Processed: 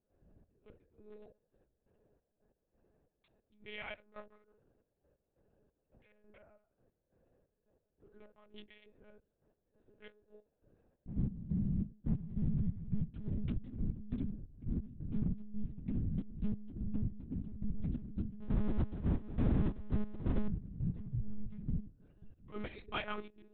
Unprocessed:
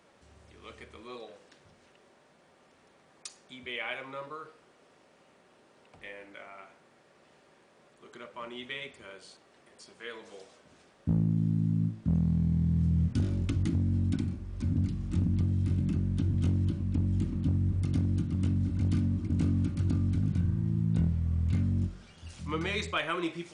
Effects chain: local Wiener filter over 41 samples; 18.41–20.48 s: power-law waveshaper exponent 0.5; peaking EQ 71 Hz +2 dB 0.79 oct; trance gate ".xxx..x." 137 bpm -12 dB; peaking EQ 2.7 kHz -2 dB 0.79 oct; monotone LPC vocoder at 8 kHz 210 Hz; trim -6 dB

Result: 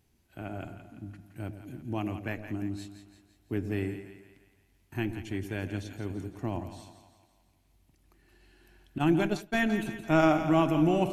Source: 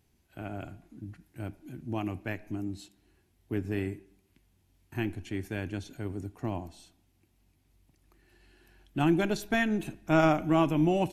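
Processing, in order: two-band feedback delay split 660 Hz, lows 109 ms, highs 169 ms, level -10 dB; 8.98–9.60 s: expander -24 dBFS

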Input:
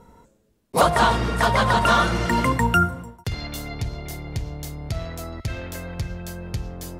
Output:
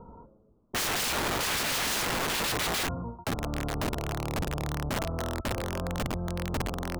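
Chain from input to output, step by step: steep low-pass 1.3 kHz 72 dB/octave; in parallel at +2.5 dB: compression 5:1, threshold -30 dBFS, peak gain reduction 15.5 dB; on the sum: integer overflow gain 19.5 dB; trim -5 dB

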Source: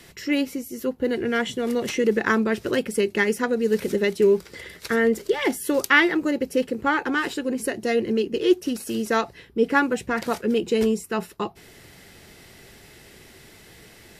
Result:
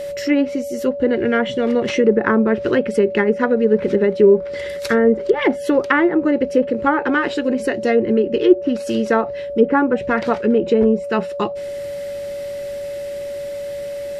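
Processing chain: low-pass that closes with the level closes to 1 kHz, closed at -16.5 dBFS; whistle 570 Hz -31 dBFS; trim +6.5 dB

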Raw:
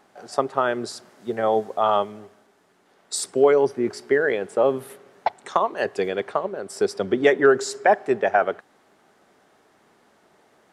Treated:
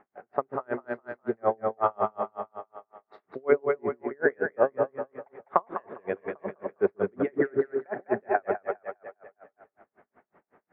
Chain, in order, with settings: steep low-pass 2.2 kHz 36 dB/octave; two-band feedback delay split 410 Hz, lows 135 ms, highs 203 ms, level -4 dB; logarithmic tremolo 5.4 Hz, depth 40 dB

